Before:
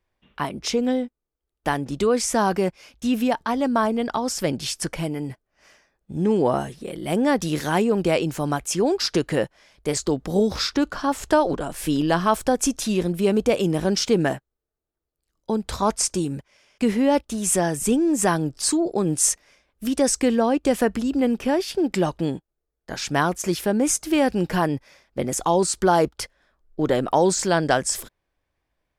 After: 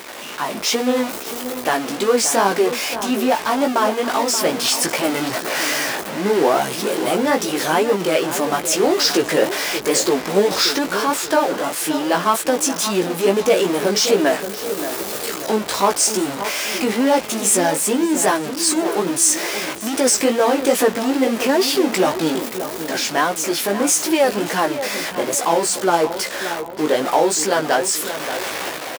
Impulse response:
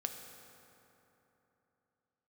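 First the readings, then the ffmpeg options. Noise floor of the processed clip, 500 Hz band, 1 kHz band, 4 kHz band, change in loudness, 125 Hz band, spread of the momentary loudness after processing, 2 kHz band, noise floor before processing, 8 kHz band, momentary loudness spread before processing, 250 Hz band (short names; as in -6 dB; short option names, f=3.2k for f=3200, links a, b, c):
-30 dBFS, +5.0 dB, +5.5 dB, +9.0 dB, +4.0 dB, -5.5 dB, 8 LU, +8.0 dB, -82 dBFS, +7.0 dB, 10 LU, +1.0 dB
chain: -filter_complex "[0:a]aeval=exprs='val(0)+0.5*0.0841*sgn(val(0))':c=same,highpass=340,dynaudnorm=f=150:g=7:m=11.5dB,flanger=delay=15:depth=4.4:speed=2.4,asplit=2[a][b];[b]adelay=578,lowpass=f=2k:p=1,volume=-10dB,asplit=2[c][d];[d]adelay=578,lowpass=f=2k:p=1,volume=0.46,asplit=2[e][f];[f]adelay=578,lowpass=f=2k:p=1,volume=0.46,asplit=2[g][h];[h]adelay=578,lowpass=f=2k:p=1,volume=0.46,asplit=2[i][j];[j]adelay=578,lowpass=f=2k:p=1,volume=0.46[k];[c][e][g][i][k]amix=inputs=5:normalize=0[l];[a][l]amix=inputs=2:normalize=0"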